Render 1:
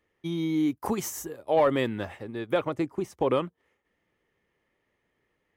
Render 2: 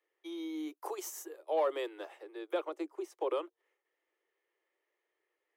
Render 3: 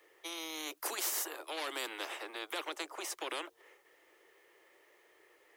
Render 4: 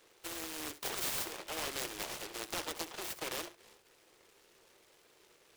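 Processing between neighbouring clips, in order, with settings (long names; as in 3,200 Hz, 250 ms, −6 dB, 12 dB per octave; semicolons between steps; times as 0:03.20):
dynamic equaliser 1,900 Hz, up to −5 dB, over −49 dBFS, Q 2; Butterworth high-pass 320 Hz 96 dB per octave; level −8 dB
every bin compressed towards the loudest bin 4 to 1
flutter between parallel walls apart 11.6 metres, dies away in 0.3 s; short delay modulated by noise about 1,900 Hz, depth 0.2 ms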